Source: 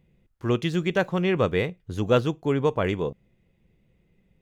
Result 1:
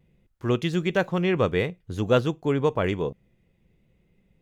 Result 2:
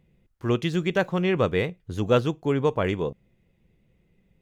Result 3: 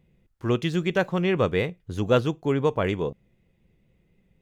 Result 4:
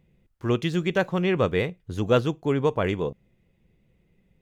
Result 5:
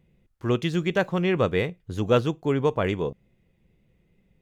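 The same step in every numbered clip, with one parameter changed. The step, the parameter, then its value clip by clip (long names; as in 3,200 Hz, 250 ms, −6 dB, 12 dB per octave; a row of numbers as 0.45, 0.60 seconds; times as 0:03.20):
pitch vibrato, speed: 0.55, 9.2, 3.9, 15, 2.2 Hertz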